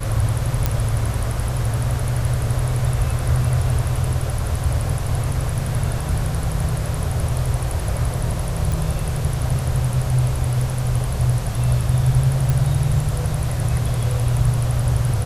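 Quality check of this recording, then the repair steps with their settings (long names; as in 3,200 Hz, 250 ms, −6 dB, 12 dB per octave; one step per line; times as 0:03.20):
0:00.66: click −5 dBFS
0:08.72: click
0:12.50: click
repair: click removal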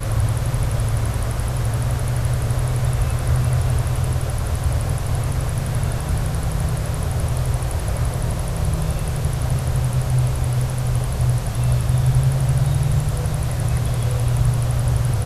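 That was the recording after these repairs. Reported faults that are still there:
none of them is left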